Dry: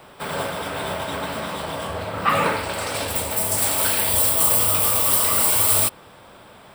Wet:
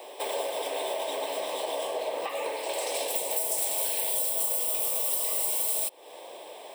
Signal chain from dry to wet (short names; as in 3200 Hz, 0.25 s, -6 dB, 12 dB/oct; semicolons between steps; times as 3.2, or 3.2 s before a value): elliptic high-pass 230 Hz, stop band 40 dB; notch 4600 Hz, Q 12; compressor 6:1, threshold -32 dBFS, peak gain reduction 16 dB; fixed phaser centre 570 Hz, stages 4; gain +6 dB